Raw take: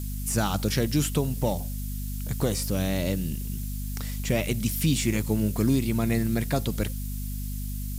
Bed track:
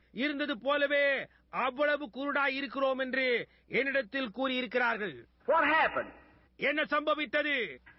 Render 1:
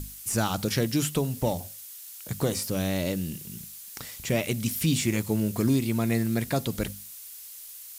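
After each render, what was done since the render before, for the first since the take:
mains-hum notches 50/100/150/200/250 Hz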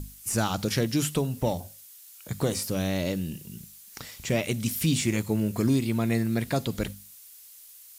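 noise reduction from a noise print 6 dB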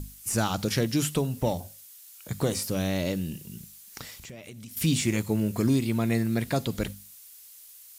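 0:04.16–0:04.77: downward compressor, threshold −41 dBFS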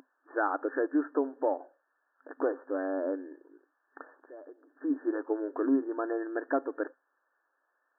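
brick-wall band-pass 260–1,800 Hz
dynamic equaliser 1,400 Hz, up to +3 dB, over −51 dBFS, Q 4.3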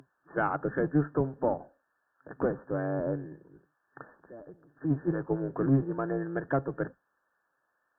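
sub-octave generator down 1 octave, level +1 dB
harmonic generator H 2 −21 dB, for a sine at −13.5 dBFS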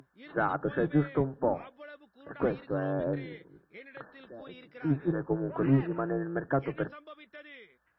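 mix in bed track −19 dB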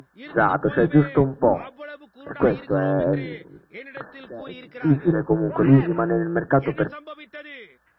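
level +10 dB

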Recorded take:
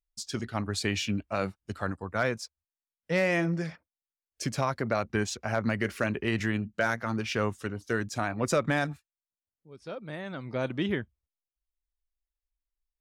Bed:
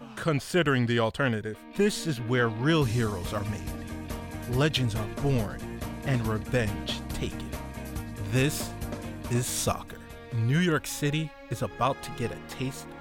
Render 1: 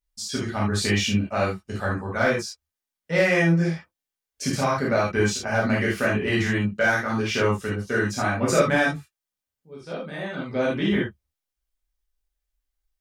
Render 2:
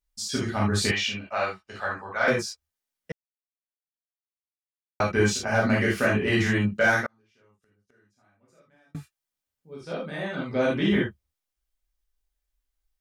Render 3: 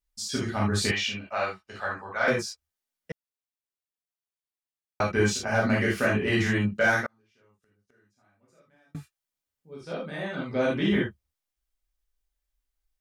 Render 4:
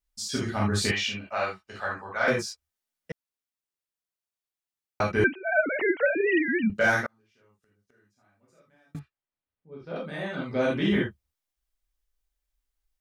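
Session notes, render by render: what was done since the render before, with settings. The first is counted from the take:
reverb whose tail is shaped and stops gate 100 ms flat, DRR −6 dB
0:00.91–0:02.28: three-way crossover with the lows and the highs turned down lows −16 dB, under 550 Hz, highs −15 dB, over 5,500 Hz; 0:03.12–0:05.00: silence; 0:07.06–0:08.95: gate with flip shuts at −24 dBFS, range −41 dB
level −1.5 dB
0:05.24–0:06.70: three sine waves on the formant tracks; 0:08.99–0:09.96: high-frequency loss of the air 350 metres

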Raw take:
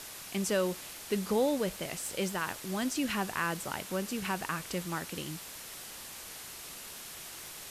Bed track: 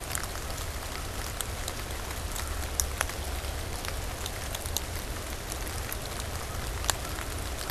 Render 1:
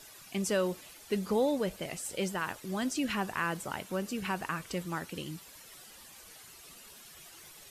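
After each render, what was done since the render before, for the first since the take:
broadband denoise 11 dB, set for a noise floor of −46 dBFS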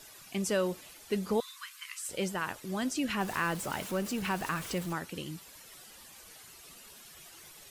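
0:01.40–0:02.09: linear-phase brick-wall high-pass 980 Hz
0:03.20–0:04.93: converter with a step at zero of −39.5 dBFS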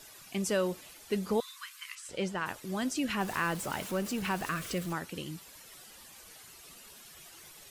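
0:01.95–0:02.46: high-frequency loss of the air 65 metres
0:04.45–0:04.86: Butterworth band-reject 880 Hz, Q 3.1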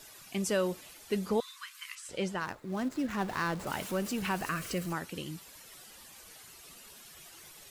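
0:01.29–0:01.75: high-shelf EQ 11,000 Hz −7.5 dB
0:02.40–0:03.67: running median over 15 samples
0:04.38–0:04.96: notch filter 3,500 Hz, Q 7.9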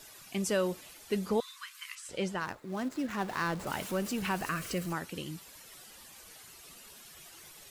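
0:02.57–0:03.41: low-shelf EQ 130 Hz −8 dB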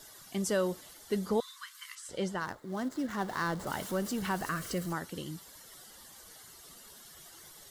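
parametric band 2,500 Hz −14.5 dB 0.22 octaves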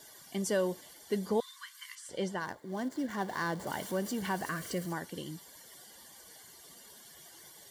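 notch comb filter 1,300 Hz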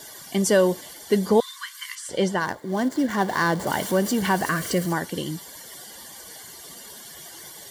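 level +12 dB

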